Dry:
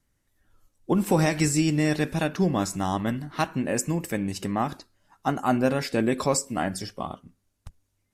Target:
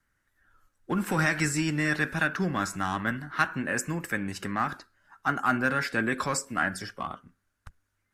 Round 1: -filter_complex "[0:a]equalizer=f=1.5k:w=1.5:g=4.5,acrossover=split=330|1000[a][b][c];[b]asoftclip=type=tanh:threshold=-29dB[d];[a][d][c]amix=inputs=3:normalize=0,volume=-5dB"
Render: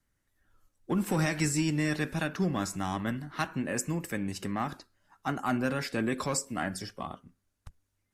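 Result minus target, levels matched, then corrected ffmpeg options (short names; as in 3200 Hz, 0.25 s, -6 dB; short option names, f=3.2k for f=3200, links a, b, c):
2000 Hz band -5.5 dB
-filter_complex "[0:a]equalizer=f=1.5k:w=1.5:g=16,acrossover=split=330|1000[a][b][c];[b]asoftclip=type=tanh:threshold=-29dB[d];[a][d][c]amix=inputs=3:normalize=0,volume=-5dB"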